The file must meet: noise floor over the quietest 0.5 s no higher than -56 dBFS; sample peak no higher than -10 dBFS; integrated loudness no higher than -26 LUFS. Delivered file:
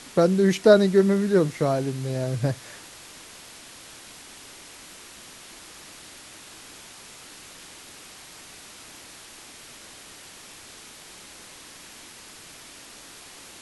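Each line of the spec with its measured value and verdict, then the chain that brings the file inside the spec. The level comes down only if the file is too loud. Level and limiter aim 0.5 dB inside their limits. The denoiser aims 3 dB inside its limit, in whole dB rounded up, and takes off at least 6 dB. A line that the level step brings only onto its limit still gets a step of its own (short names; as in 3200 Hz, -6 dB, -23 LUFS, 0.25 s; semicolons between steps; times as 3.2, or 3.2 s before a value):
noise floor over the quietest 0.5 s -45 dBFS: fail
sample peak -3.5 dBFS: fail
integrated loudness -21.5 LUFS: fail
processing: denoiser 9 dB, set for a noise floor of -45 dBFS; gain -5 dB; limiter -10.5 dBFS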